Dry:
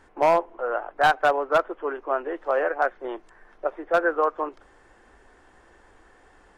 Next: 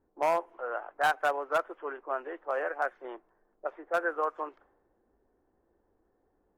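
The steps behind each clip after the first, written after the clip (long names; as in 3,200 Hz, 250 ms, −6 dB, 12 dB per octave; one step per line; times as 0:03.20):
spectral tilt +2.5 dB per octave
low-pass that shuts in the quiet parts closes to 360 Hz, open at −21.5 dBFS
dynamic equaliser 4,100 Hz, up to −7 dB, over −43 dBFS, Q 0.94
level −6.5 dB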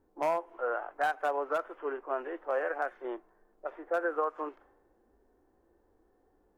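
harmonic and percussive parts rebalanced percussive −10 dB
downward compressor 5 to 1, threshold −33 dBFS, peak gain reduction 9 dB
level +6.5 dB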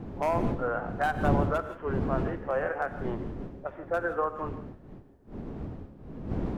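wind on the microphone 260 Hz −36 dBFS
reverb whose tail is shaped and stops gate 190 ms rising, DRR 10.5 dB
level +1.5 dB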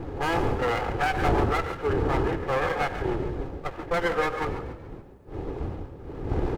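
lower of the sound and its delayed copy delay 2.4 ms
in parallel at +2 dB: brickwall limiter −25 dBFS, peak gain reduction 11 dB
on the sum: echo with shifted repeats 141 ms, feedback 45%, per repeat +34 Hz, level −13 dB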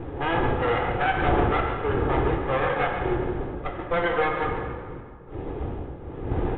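dense smooth reverb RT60 1.8 s, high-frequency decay 0.65×, DRR 2.5 dB
downsampling to 8,000 Hz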